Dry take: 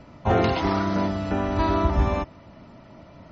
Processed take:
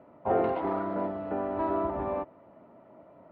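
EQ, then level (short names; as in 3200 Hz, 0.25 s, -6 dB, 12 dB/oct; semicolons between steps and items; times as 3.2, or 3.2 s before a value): band-pass 500 Hz, Q 1; air absorption 360 m; low shelf 430 Hz -7 dB; +1.5 dB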